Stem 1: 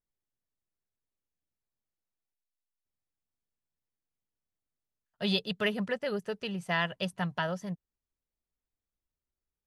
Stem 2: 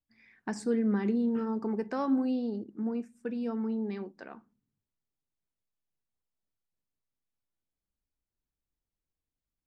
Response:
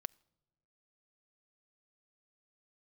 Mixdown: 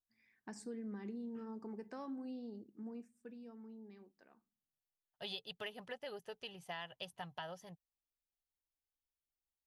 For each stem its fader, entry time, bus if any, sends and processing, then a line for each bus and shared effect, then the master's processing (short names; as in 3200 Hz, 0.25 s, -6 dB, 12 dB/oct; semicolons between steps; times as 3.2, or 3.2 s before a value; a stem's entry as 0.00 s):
-12.5 dB, 0.00 s, no send, thirty-one-band EQ 200 Hz -12 dB, 800 Hz +9 dB, 3150 Hz +6 dB, 8000 Hz -5 dB
3.1 s -14 dB -> 3.53 s -21 dB, 0.00 s, no send, dry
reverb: off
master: high shelf 6400 Hz +9 dB; notch 1400 Hz, Q 19; compressor, threshold -41 dBFS, peak gain reduction 8 dB